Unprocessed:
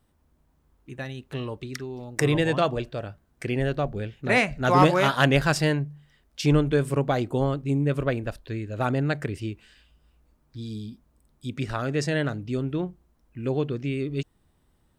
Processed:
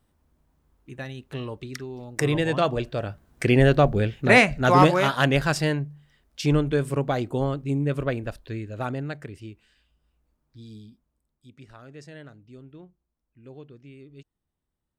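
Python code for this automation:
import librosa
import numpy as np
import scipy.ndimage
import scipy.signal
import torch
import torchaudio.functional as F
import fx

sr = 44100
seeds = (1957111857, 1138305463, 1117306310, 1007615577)

y = fx.gain(x, sr, db=fx.line((2.46, -1.0), (3.49, 8.5), (4.06, 8.5), (5.1, -1.0), (8.6, -1.0), (9.19, -8.5), (10.76, -8.5), (11.53, -18.0)))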